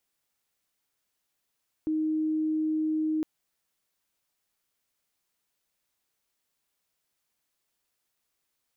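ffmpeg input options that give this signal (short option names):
-f lavfi -i "sine=f=312:d=1.36:r=44100,volume=-6.44dB"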